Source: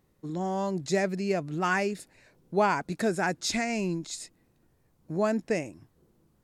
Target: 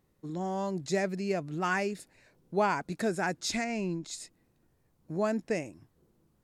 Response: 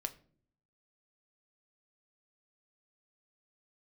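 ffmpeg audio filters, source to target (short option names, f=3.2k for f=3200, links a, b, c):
-filter_complex "[0:a]asettb=1/sr,asplit=3[a][b][c];[a]atrim=end=3.644[d];[b]atrim=start=3.64:end=4.06,asetpts=PTS-STARTPTS,afade=t=in:d=0.004:c=qsin,afade=t=out:st=0.416:d=0.004:c=qsin,highshelf=f=5.8k:g=-11[e];[c]atrim=start=4.056[f];[d][e]acrossfade=d=0.004:c1=hsin:c2=qsin[g];[g][f]acrossfade=d=0.004:c1=qsin:c2=hsin,volume=-3dB"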